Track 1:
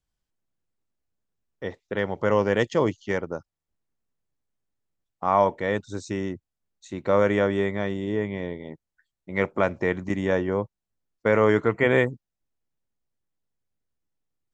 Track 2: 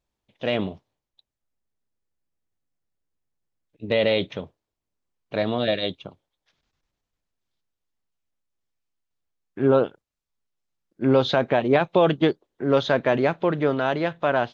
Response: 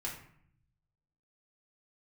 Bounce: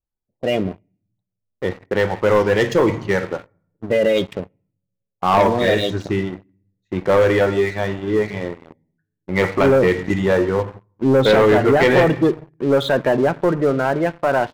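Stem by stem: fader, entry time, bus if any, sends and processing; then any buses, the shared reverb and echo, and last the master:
−4.5 dB, 0.00 s, send −4 dB, reverb reduction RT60 1.3 s; low-pass that shuts in the quiet parts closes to 1,200 Hz, open at −22.5 dBFS
−6.5 dB, 0.00 s, send −13 dB, low-pass that shuts in the quiet parts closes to 840 Hz, open at −16.5 dBFS; gate on every frequency bin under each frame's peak −20 dB strong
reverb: on, RT60 0.60 s, pre-delay 5 ms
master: leveller curve on the samples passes 3

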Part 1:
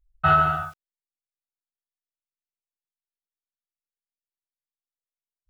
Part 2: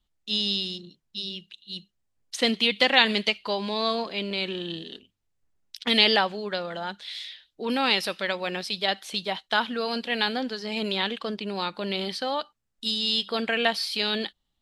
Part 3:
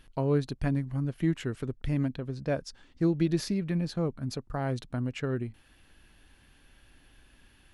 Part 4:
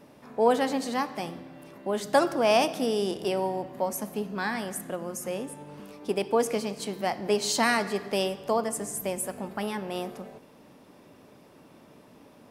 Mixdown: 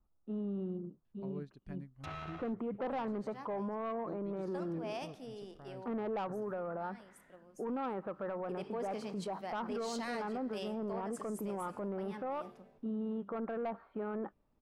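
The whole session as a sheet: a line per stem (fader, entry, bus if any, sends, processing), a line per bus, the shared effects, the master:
−13.0 dB, 1.80 s, no bus, no send, gap after every zero crossing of 0.3 ms; treble cut that deepens with the level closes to 1,900 Hz, closed at −27.5 dBFS
+2.0 dB, 0.00 s, bus A, no send, elliptic low-pass filter 1,300 Hz, stop band 80 dB
−17.5 dB, 1.05 s, bus A, no send, expander for the loud parts 1.5 to 1, over −45 dBFS
0:07.98 −20.5 dB → 0:08.38 −9 dB, 2.40 s, bus A, no send, high-shelf EQ 12,000 Hz −4.5 dB; multiband upward and downward expander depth 70%
bus A: 0.0 dB, soft clipping −21 dBFS, distortion −14 dB; brickwall limiter −27 dBFS, peak gain reduction 6 dB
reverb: not used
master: high-shelf EQ 8,700 Hz −11.5 dB; brickwall limiter −32 dBFS, peak gain reduction 7.5 dB

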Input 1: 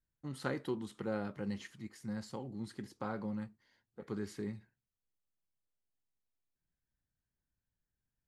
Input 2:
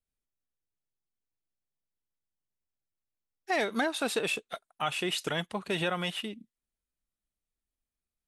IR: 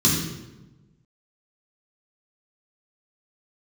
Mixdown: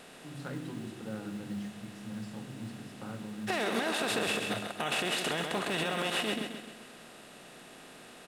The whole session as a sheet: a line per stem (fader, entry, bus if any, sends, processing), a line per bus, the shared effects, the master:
−6.0 dB, 0.00 s, send −22 dB, no echo send, no processing
−2.0 dB, 0.00 s, no send, echo send −7.5 dB, compressor on every frequency bin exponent 0.4; brickwall limiter −16.5 dBFS, peak gain reduction 8 dB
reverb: on, RT60 1.1 s, pre-delay 3 ms
echo: repeating echo 132 ms, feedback 48%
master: floating-point word with a short mantissa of 4 bits; brickwall limiter −21 dBFS, peak gain reduction 4.5 dB

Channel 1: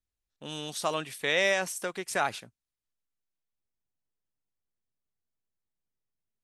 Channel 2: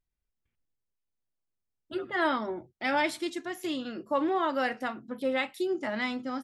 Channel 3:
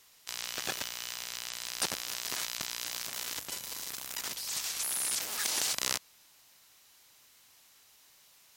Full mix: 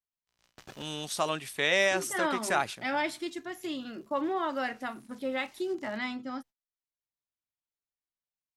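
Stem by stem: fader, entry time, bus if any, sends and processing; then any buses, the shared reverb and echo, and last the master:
+0.5 dB, 0.35 s, no send, no processing
−3.0 dB, 0.00 s, no send, no processing
−8.5 dB, 0.00 s, no send, spectral tilt −3 dB per octave; automatic ducking −15 dB, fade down 1.50 s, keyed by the second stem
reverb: not used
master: notch filter 490 Hz, Q 12; noise gate −50 dBFS, range −29 dB

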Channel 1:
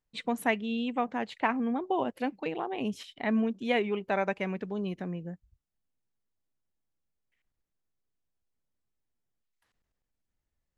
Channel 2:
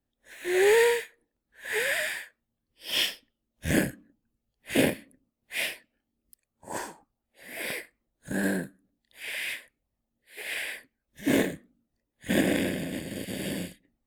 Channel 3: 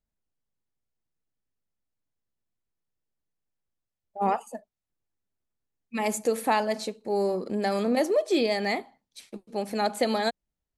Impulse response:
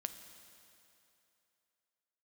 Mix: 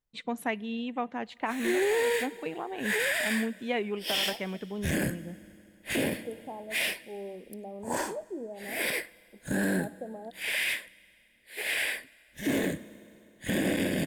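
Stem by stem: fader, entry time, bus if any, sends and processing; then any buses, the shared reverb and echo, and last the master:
−3.5 dB, 0.00 s, send −16.5 dB, no processing
+3.0 dB, 1.20 s, send −11.5 dB, no processing
−14.0 dB, 0.00 s, no send, inverse Chebyshev low-pass filter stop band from 1,600 Hz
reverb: on, RT60 2.9 s, pre-delay 5 ms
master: brickwall limiter −19 dBFS, peak gain reduction 13 dB

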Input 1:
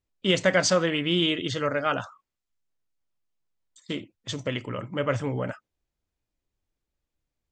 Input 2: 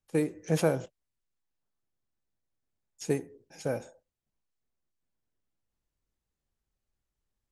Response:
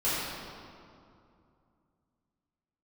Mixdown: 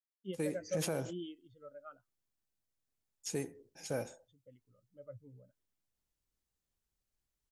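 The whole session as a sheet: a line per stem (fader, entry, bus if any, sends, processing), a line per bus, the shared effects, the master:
−19.0 dB, 0.00 s, no send, high-shelf EQ 5,200 Hz +5.5 dB; every bin expanded away from the loudest bin 2.5 to 1
−4.5 dB, 0.25 s, no send, high-shelf EQ 3,100 Hz +7 dB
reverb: not used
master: brickwall limiter −26 dBFS, peak gain reduction 9 dB

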